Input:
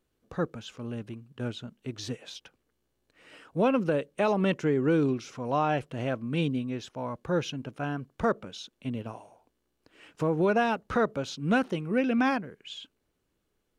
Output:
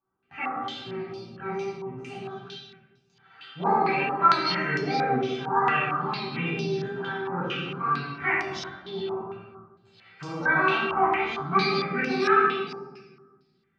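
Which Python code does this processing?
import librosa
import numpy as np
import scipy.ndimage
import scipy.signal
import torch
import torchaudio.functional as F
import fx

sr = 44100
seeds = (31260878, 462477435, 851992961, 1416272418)

y = fx.pitch_trill(x, sr, semitones=8.0, every_ms=281)
y = scipy.signal.sosfilt(scipy.signal.butter(2, 96.0, 'highpass', fs=sr, output='sos'), y)
y = fx.peak_eq(y, sr, hz=1300.0, db=10.0, octaves=0.28)
y = fx.comb_fb(y, sr, f0_hz=390.0, decay_s=0.24, harmonics='all', damping=0.0, mix_pct=90)
y = fx.room_shoebox(y, sr, seeds[0], volume_m3=1000.0, walls='mixed', distance_m=8.3)
y = fx.wow_flutter(y, sr, seeds[1], rate_hz=2.1, depth_cents=18.0)
y = fx.peak_eq(y, sr, hz=500.0, db=-8.5, octaves=2.3)
y = fx.filter_held_lowpass(y, sr, hz=4.4, low_hz=960.0, high_hz=5400.0)
y = F.gain(torch.from_numpy(y), 3.0).numpy()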